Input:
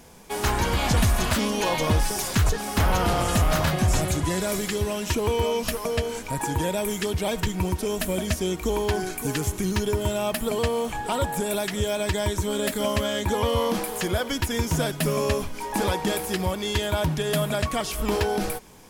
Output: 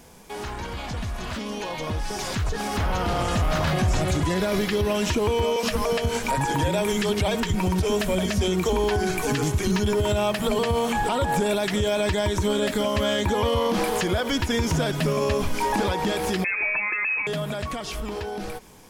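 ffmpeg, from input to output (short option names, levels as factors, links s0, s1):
-filter_complex "[0:a]asettb=1/sr,asplit=3[s0][s1][s2];[s0]atrim=end=4.344[s3];[s1]atrim=start=4.34:end=4.95,asetpts=PTS-STARTPTS,afade=t=in:d=0.004:c=qsin,afade=t=out:st=0.606:d=0.004:c=qsin,equalizer=f=7700:t=o:w=0.59:g=-11[s4];[s2]atrim=start=4.946[s5];[s3][s4]acrossfade=d=0.004:c1=hsin:c2=qsin[s6];[s6][s5]acrossfade=d=0.004:c1=qsin:c2=hsin,asettb=1/sr,asplit=3[s7][s8][s9];[s7]atrim=end=5.564[s10];[s8]atrim=start=5.56:end=11.04,asetpts=PTS-STARTPTS,afade=t=in:d=0.004:c=qsin,afade=t=out:st=5.476:d=0.004:c=qsin,acrossover=split=350[s11][s12];[s11]adelay=70[s13];[s13][s12]amix=inputs=2:normalize=0,atrim=end_sample=241668[s14];[s9]atrim=start=11.036[s15];[s10][s14]acrossfade=d=0.004:c1=hsin:c2=qsin[s16];[s16][s15]acrossfade=d=0.004:c1=qsin:c2=hsin,asettb=1/sr,asplit=3[s17][s18][s19];[s17]atrim=end=16.444[s20];[s18]atrim=start=16.44:end=17.27,asetpts=PTS-STARTPTS,afade=t=in:d=0.004:c=qsin,afade=t=out:st=0.826:d=0.004:c=qsin,lowpass=f=2300:t=q:w=0.5098,lowpass=f=2300:t=q:w=0.6013,lowpass=f=2300:t=q:w=0.9,lowpass=f=2300:t=q:w=2.563,afreqshift=-2700[s21];[s19]atrim=start=17.266[s22];[s20][s21]acrossfade=d=0.004:c1=hsin:c2=qsin[s23];[s23][s22]acrossfade=d=0.004:c1=qsin:c2=hsin,acrossover=split=6400[s24][s25];[s25]acompressor=threshold=0.00447:ratio=4:attack=1:release=60[s26];[s24][s26]amix=inputs=2:normalize=0,alimiter=level_in=1.06:limit=0.0631:level=0:latency=1:release=121,volume=0.944,dynaudnorm=f=600:g=9:m=3.16"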